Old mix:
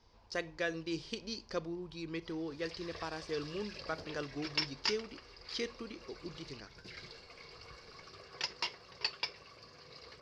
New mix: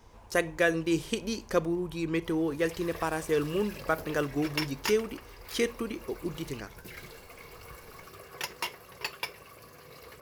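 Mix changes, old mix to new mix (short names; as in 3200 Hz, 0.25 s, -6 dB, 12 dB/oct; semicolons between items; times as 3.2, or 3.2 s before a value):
background -5.0 dB; master: remove ladder low-pass 5300 Hz, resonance 65%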